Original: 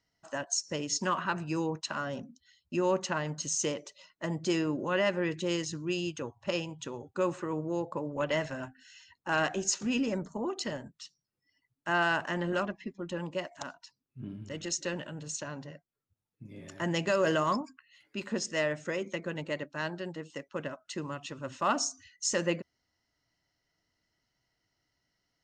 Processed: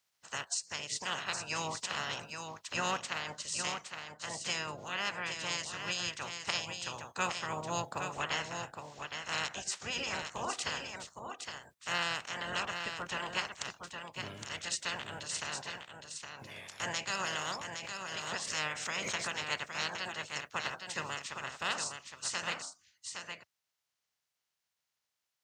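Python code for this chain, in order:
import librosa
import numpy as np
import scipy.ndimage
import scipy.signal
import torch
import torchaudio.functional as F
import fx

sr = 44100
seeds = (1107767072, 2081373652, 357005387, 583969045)

y = fx.spec_clip(x, sr, under_db=25)
y = scipy.signal.sosfilt(scipy.signal.butter(2, 78.0, 'highpass', fs=sr, output='sos'), y)
y = fx.peak_eq(y, sr, hz=300.0, db=-9.5, octaves=1.5)
y = fx.rider(y, sr, range_db=4, speed_s=0.5)
y = y + 10.0 ** (-6.5 / 20.0) * np.pad(y, (int(814 * sr / 1000.0), 0))[:len(y)]
y = fx.pre_swell(y, sr, db_per_s=47.0, at=(17.19, 19.34))
y = y * 10.0 ** (-3.5 / 20.0)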